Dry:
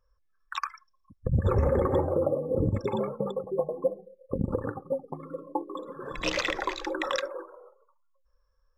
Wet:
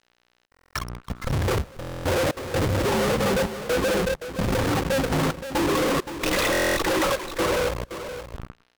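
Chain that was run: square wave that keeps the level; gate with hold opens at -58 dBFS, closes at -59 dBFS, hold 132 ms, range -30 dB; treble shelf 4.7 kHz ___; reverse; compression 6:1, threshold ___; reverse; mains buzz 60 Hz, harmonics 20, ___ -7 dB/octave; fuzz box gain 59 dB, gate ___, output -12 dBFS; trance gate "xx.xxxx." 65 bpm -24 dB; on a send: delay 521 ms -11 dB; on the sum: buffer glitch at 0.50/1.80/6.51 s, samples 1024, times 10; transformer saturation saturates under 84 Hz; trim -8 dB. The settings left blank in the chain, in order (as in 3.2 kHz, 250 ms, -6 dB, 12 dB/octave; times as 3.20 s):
-5.5 dB, -35 dBFS, -59 dBFS, -55 dBFS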